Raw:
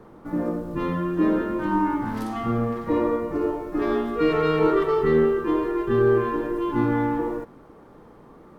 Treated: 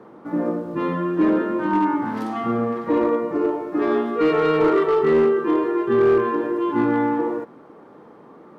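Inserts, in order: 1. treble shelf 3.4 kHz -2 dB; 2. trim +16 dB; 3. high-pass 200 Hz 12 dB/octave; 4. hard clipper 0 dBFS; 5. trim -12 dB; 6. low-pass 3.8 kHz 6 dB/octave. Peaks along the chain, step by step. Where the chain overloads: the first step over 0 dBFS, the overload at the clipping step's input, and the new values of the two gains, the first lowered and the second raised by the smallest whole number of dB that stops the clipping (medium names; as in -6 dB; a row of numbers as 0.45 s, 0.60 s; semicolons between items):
-8.5 dBFS, +7.5 dBFS, +7.0 dBFS, 0.0 dBFS, -12.0 dBFS, -12.0 dBFS; step 2, 7.0 dB; step 2 +9 dB, step 5 -5 dB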